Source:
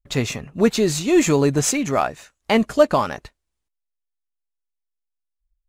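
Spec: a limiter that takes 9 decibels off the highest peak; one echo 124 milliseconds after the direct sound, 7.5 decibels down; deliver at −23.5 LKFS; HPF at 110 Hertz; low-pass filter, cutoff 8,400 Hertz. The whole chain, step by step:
high-pass filter 110 Hz
low-pass filter 8,400 Hz
brickwall limiter −12.5 dBFS
single-tap delay 124 ms −7.5 dB
level −1 dB

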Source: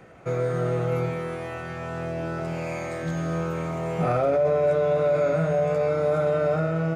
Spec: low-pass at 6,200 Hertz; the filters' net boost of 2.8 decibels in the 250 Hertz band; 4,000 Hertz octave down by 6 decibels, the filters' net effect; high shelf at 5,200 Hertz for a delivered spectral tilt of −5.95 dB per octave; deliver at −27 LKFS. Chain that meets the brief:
low-pass filter 6,200 Hz
parametric band 250 Hz +5.5 dB
parametric band 4,000 Hz −5 dB
high-shelf EQ 5,200 Hz −6 dB
level −2.5 dB

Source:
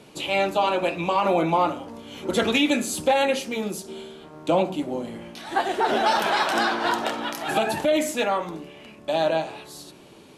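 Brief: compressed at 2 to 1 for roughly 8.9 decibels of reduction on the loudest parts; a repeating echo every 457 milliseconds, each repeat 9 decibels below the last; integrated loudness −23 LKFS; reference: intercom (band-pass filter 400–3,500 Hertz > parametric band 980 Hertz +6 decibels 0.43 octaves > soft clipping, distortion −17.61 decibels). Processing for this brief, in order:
downward compressor 2 to 1, threshold −33 dBFS
band-pass filter 400–3,500 Hz
parametric band 980 Hz +6 dB 0.43 octaves
repeating echo 457 ms, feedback 35%, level −9 dB
soft clipping −22 dBFS
level +9.5 dB

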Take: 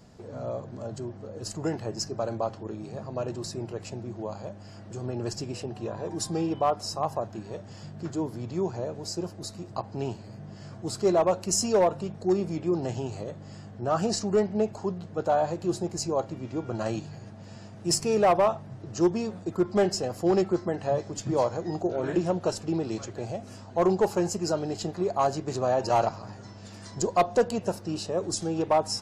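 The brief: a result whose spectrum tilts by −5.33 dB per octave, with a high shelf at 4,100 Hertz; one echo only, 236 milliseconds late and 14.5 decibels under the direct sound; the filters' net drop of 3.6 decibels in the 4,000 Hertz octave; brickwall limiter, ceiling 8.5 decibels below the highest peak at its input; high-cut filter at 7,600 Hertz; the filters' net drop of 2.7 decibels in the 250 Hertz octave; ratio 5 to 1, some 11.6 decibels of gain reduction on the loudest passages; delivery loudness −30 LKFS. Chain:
low-pass filter 7,600 Hz
parametric band 250 Hz −4.5 dB
parametric band 4,000 Hz −8.5 dB
high-shelf EQ 4,100 Hz +4.5 dB
downward compressor 5 to 1, threshold −32 dBFS
brickwall limiter −28.5 dBFS
single-tap delay 236 ms −14.5 dB
level +9 dB

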